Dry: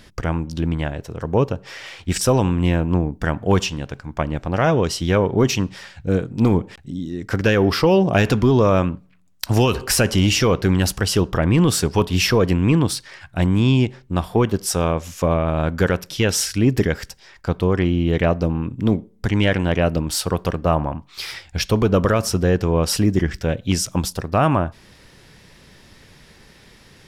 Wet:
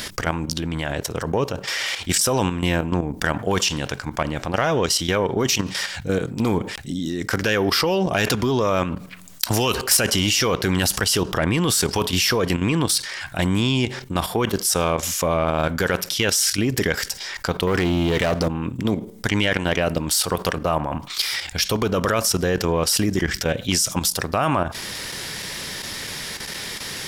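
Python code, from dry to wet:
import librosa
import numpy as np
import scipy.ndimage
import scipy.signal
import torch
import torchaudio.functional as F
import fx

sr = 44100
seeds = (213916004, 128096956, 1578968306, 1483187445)

y = fx.leveller(x, sr, passes=2, at=(17.67, 18.48))
y = fx.tilt_eq(y, sr, slope=2.5)
y = fx.notch(y, sr, hz=2600.0, q=24.0)
y = fx.level_steps(y, sr, step_db=12)
y = 10.0 ** (-9.5 / 20.0) * np.tanh(y / 10.0 ** (-9.5 / 20.0))
y = fx.env_flatten(y, sr, amount_pct=50)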